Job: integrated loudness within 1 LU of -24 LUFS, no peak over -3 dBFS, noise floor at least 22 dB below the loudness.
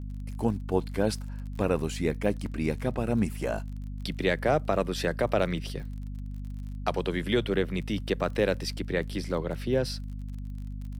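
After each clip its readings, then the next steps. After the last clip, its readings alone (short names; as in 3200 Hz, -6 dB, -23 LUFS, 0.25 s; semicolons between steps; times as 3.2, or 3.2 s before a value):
ticks 33/s; hum 50 Hz; harmonics up to 250 Hz; hum level -34 dBFS; loudness -30.0 LUFS; peak -11.0 dBFS; loudness target -24.0 LUFS
-> de-click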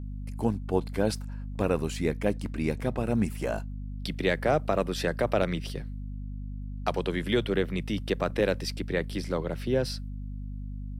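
ticks 0.18/s; hum 50 Hz; harmonics up to 250 Hz; hum level -34 dBFS
-> de-hum 50 Hz, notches 5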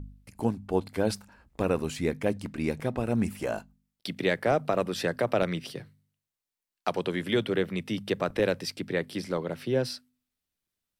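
hum none; loudness -30.0 LUFS; peak -12.0 dBFS; loudness target -24.0 LUFS
-> gain +6 dB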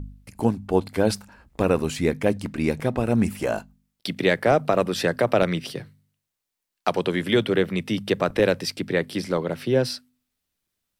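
loudness -24.0 LUFS; peak -6.0 dBFS; noise floor -82 dBFS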